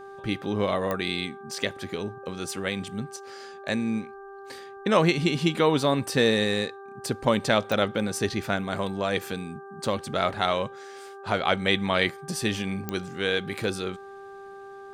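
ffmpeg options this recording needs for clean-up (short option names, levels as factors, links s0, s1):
-af "adeclick=t=4,bandreject=f=394.3:t=h:w=4,bandreject=f=788.6:t=h:w=4,bandreject=f=1182.9:t=h:w=4,bandreject=f=1577.2:t=h:w=4"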